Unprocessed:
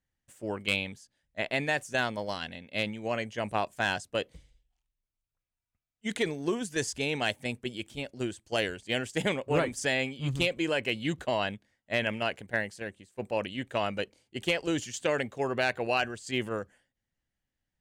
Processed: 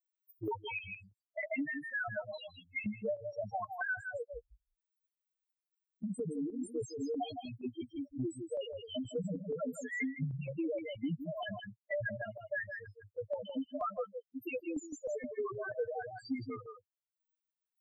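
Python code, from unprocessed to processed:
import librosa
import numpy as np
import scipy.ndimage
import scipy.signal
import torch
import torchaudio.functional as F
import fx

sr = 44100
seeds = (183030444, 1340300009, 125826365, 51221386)

y = fx.bin_expand(x, sr, power=3.0)
y = fx.over_compress(y, sr, threshold_db=-41.0, ratio=-1.0)
y = fx.highpass(y, sr, hz=370.0, slope=12, at=(13.48, 15.5), fade=0.02)
y = y + 0.7 * np.pad(y, (int(6.6 * sr / 1000.0), 0))[:len(y)]
y = fx.spec_topn(y, sr, count=2)
y = fx.chopper(y, sr, hz=2.1, depth_pct=60, duty_pct=65)
y = fx.high_shelf(y, sr, hz=2100.0, db=-10.5)
y = y + 10.0 ** (-10.0 / 20.0) * np.pad(y, (int(160 * sr / 1000.0), 0))[:len(y)]
y = fx.band_squash(y, sr, depth_pct=100)
y = y * 10.0 ** (10.5 / 20.0)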